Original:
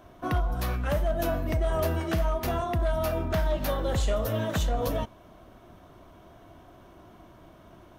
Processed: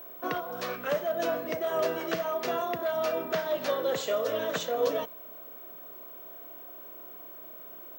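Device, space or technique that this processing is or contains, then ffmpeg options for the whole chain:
old television with a line whistle: -af "highpass=f=210:w=0.5412,highpass=f=210:w=1.3066,equalizer=f=220:t=q:w=4:g=-10,equalizer=f=320:t=q:w=4:g=-5,equalizer=f=470:t=q:w=4:g=6,equalizer=f=840:t=q:w=4:g=-6,lowpass=f=7500:w=0.5412,lowpass=f=7500:w=1.3066,aeval=exprs='val(0)+0.00631*sin(2*PI*15734*n/s)':c=same,volume=1.12"

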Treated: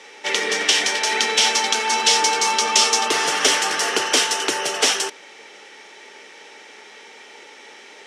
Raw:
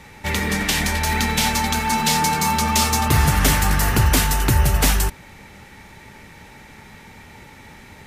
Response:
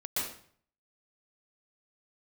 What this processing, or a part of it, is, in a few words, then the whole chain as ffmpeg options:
phone speaker on a table: -af "highpass=f=350:w=0.5412,highpass=f=350:w=1.3066,equalizer=f=440:t=q:w=4:g=6,equalizer=f=960:t=q:w=4:g=-3,equalizer=f=3100:t=q:w=4:g=8,equalizer=f=5600:t=q:w=4:g=8,lowpass=f=8900:w=0.5412,lowpass=f=8900:w=1.3066,volume=1.12"

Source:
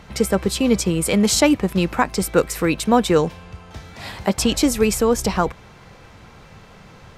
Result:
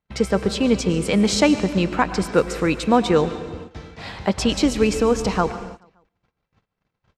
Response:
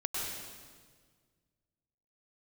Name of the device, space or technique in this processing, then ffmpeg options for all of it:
keyed gated reverb: -filter_complex "[0:a]agate=range=0.0126:threshold=0.0112:ratio=16:detection=peak,lowpass=5700,aecho=1:1:143|286|429|572:0.0794|0.0429|0.0232|0.0125,asplit=3[s0][s1][s2];[1:a]atrim=start_sample=2205[s3];[s1][s3]afir=irnorm=-1:irlink=0[s4];[s2]apad=whole_len=341590[s5];[s4][s5]sidechaingate=range=0.0251:threshold=0.00708:ratio=16:detection=peak,volume=0.211[s6];[s0][s6]amix=inputs=2:normalize=0,volume=0.75"

